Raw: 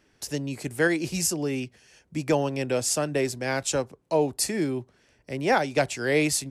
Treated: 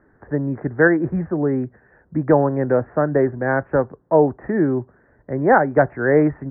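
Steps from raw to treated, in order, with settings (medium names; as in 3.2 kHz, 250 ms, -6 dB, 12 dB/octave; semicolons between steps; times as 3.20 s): steep low-pass 1.8 kHz 72 dB/octave; trim +8.5 dB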